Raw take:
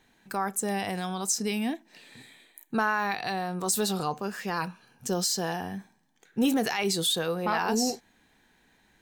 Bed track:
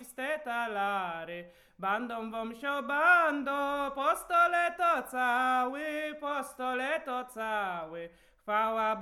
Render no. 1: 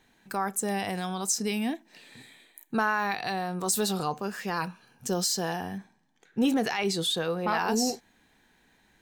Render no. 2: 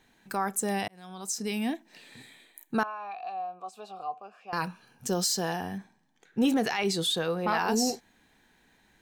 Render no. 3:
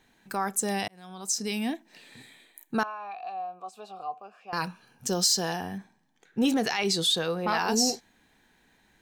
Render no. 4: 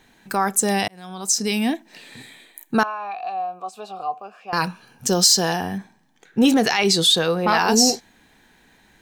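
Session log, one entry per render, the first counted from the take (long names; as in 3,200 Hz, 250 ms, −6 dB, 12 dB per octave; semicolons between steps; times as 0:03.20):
0:05.78–0:07.48: high-shelf EQ 8,900 Hz −11.5 dB
0:00.88–0:01.70: fade in linear; 0:02.83–0:04.53: formant filter a
dynamic equaliser 5,100 Hz, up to +6 dB, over −44 dBFS, Q 0.91
level +8.5 dB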